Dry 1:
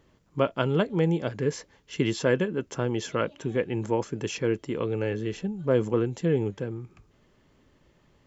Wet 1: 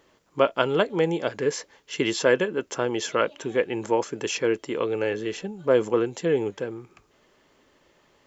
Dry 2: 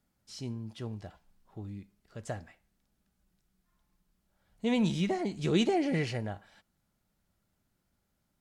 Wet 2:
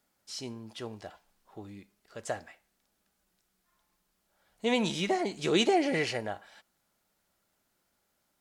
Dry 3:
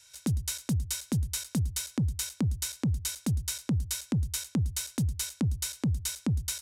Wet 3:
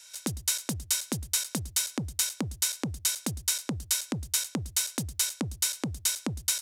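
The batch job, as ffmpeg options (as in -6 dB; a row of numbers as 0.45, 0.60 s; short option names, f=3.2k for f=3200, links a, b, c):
-af "bass=f=250:g=-15,treble=f=4k:g=1,volume=5.5dB"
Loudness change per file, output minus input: +2.5, +1.5, +2.0 LU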